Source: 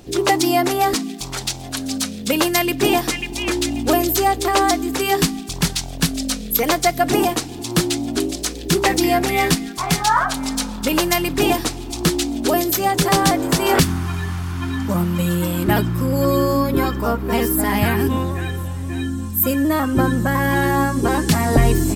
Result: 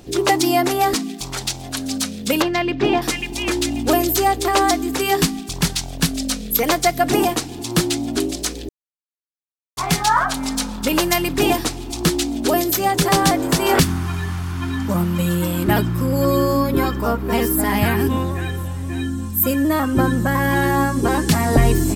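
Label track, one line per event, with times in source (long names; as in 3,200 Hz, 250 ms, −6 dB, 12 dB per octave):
2.420000	3.020000	high-frequency loss of the air 210 metres
8.690000	9.770000	silence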